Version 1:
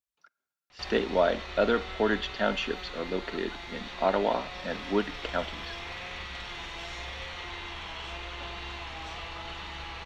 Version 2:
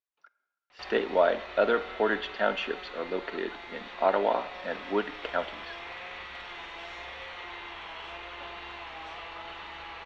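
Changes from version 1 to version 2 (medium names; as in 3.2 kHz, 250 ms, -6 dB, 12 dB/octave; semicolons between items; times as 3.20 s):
speech: send +9.5 dB; master: add tone controls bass -13 dB, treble -13 dB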